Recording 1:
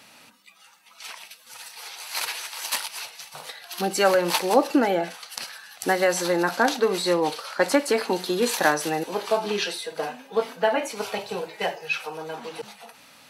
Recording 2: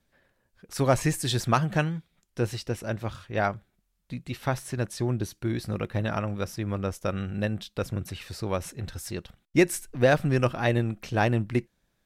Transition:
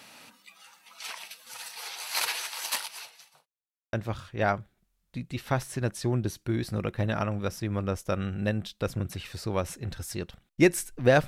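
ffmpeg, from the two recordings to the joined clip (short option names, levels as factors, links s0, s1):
-filter_complex "[0:a]apad=whole_dur=11.27,atrim=end=11.27,asplit=2[s0][s1];[s0]atrim=end=3.46,asetpts=PTS-STARTPTS,afade=t=out:st=2.38:d=1.08[s2];[s1]atrim=start=3.46:end=3.93,asetpts=PTS-STARTPTS,volume=0[s3];[1:a]atrim=start=2.89:end=10.23,asetpts=PTS-STARTPTS,afade=t=in:d=0.004:c=hsin[s4];[s2][s3][s4]concat=n=3:v=0:a=1"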